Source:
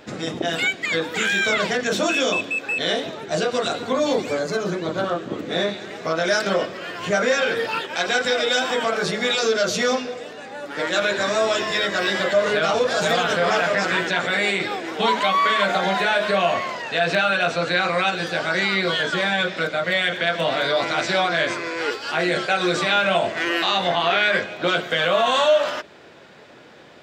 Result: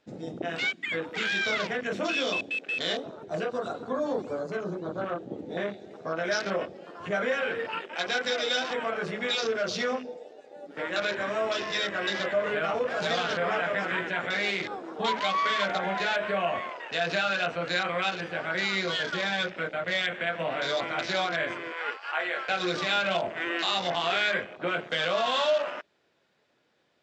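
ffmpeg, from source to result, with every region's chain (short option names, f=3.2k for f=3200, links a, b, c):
-filter_complex "[0:a]asettb=1/sr,asplit=3[a][b][c];[a]atrim=end=21.724[d];[b]atrim=start=21.72:end=22.49,asetpts=PTS-STARTPTS,afade=t=in:d=0.004:c=qsin,afade=t=out:st=0.766:d=0.004:c=qsin,highpass=630,lowpass=7k,equalizer=f=1.1k:w=1:g=4[e];[c]atrim=start=22.486[f];[d][e]acrossfade=d=0.004:c1=hsin:c2=qsin[g];[g][f]acrossfade=d=0.004:c1=qsin:c2=hsin,afwtdn=0.0398,lowpass=6.1k,aemphasis=mode=production:type=50fm,volume=-8dB"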